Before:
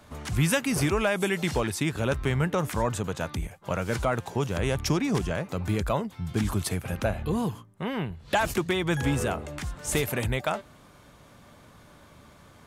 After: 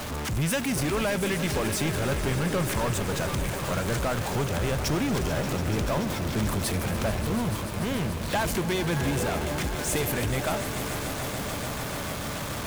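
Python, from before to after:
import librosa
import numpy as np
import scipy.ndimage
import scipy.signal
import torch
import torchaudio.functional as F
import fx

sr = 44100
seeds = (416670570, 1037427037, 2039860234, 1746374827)

y = x + 0.5 * 10.0 ** (-38.0 / 20.0) * np.sign(x)
y = fx.power_curve(y, sr, exponent=0.5)
y = fx.echo_swell(y, sr, ms=145, loudest=5, wet_db=-14)
y = F.gain(torch.from_numpy(y), -6.5).numpy()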